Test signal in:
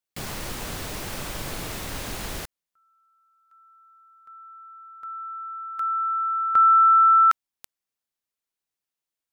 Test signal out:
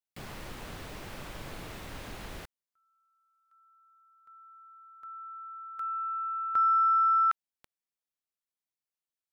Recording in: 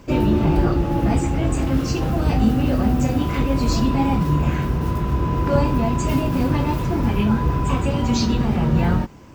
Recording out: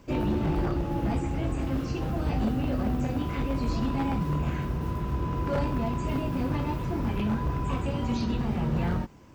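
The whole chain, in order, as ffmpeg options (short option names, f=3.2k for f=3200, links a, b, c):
-filter_complex "[0:a]acrossover=split=3800[a][b];[b]acompressor=threshold=-44dB:ratio=4:attack=1:release=60[c];[a][c]amix=inputs=2:normalize=0,aeval=exprs='0.596*(cos(1*acos(clip(val(0)/0.596,-1,1)))-cos(1*PI/2))+0.0237*(cos(2*acos(clip(val(0)/0.596,-1,1)))-cos(2*PI/2))+0.00376*(cos(8*acos(clip(val(0)/0.596,-1,1)))-cos(8*PI/2))':c=same,aeval=exprs='0.266*(abs(mod(val(0)/0.266+3,4)-2)-1)':c=same,volume=-8.5dB"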